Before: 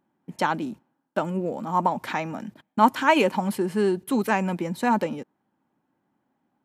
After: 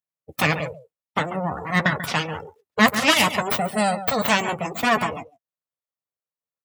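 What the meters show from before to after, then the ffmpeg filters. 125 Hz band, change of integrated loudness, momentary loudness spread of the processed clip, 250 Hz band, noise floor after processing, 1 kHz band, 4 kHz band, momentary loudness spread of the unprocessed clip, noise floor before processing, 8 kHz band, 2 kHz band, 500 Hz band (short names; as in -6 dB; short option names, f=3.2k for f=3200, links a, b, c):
+4.0 dB, +3.0 dB, 14 LU, -0.5 dB, under -85 dBFS, 0.0 dB, +12.0 dB, 13 LU, -76 dBFS, +11.5 dB, +8.0 dB, -0.5 dB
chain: -filter_complex "[0:a]aemphasis=mode=production:type=75fm,aeval=exprs='abs(val(0))':c=same,equalizer=f=370:t=o:w=0.34:g=-9.5,bandreject=f=1.6k:w=20,asplit=2[a][b];[b]adelay=13,volume=-12dB[c];[a][c]amix=inputs=2:normalize=0,asplit=2[d][e];[e]aecho=0:1:140:0.251[f];[d][f]amix=inputs=2:normalize=0,acontrast=33,highpass=f=95:w=0.5412,highpass=f=95:w=1.3066,afftdn=nr=30:nf=-35,volume=2.5dB"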